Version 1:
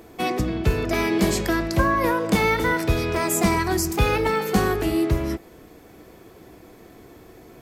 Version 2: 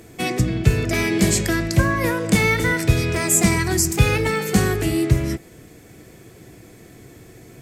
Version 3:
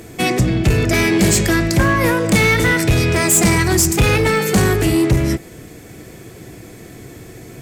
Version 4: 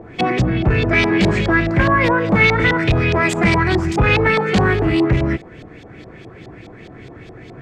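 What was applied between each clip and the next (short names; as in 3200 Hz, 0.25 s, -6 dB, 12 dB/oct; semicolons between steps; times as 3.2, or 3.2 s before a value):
ten-band EQ 125 Hz +10 dB, 1000 Hz -6 dB, 2000 Hz +5 dB, 8000 Hz +10 dB
soft clip -15.5 dBFS, distortion -10 dB; gain +7.5 dB
LFO low-pass saw up 4.8 Hz 740–4200 Hz; gain -1.5 dB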